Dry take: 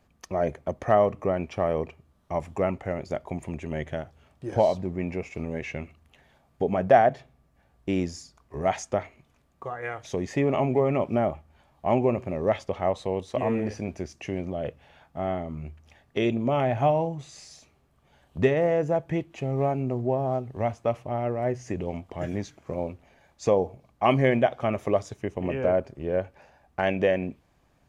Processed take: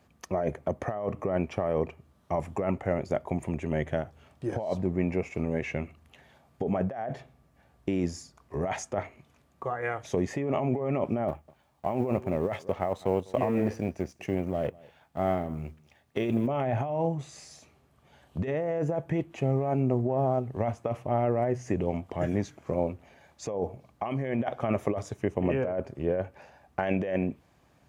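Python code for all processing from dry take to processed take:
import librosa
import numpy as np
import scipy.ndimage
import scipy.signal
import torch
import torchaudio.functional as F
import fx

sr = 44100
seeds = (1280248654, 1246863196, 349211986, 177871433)

y = fx.chain(x, sr, fx.law_mismatch(coded='A'),
    fx.echo_single(ms=200, db=-23.5), at=(11.28, 16.47))
y = fx.over_compress(y, sr, threshold_db=-27.0, ratio=-1.0)
y = scipy.signal.sosfilt(scipy.signal.butter(2, 68.0, 'highpass', fs=sr, output='sos'), y)
y = fx.dynamic_eq(y, sr, hz=4300.0, q=0.76, threshold_db=-53.0, ratio=4.0, max_db=-6)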